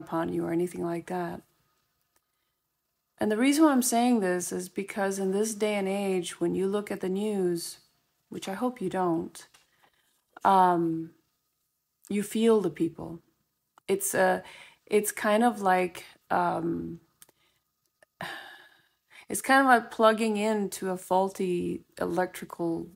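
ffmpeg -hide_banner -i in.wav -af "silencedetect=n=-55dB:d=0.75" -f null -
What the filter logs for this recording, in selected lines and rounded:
silence_start: 2.18
silence_end: 3.18 | silence_duration: 1.00
silence_start: 11.16
silence_end: 12.02 | silence_duration: 0.86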